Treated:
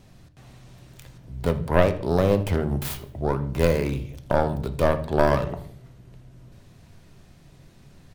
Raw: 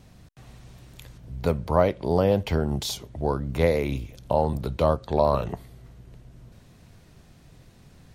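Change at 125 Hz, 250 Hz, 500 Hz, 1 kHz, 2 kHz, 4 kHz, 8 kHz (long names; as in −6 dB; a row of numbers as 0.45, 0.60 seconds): +2.0, +2.0, +0.5, 0.0, +5.0, −2.5, −1.5 decibels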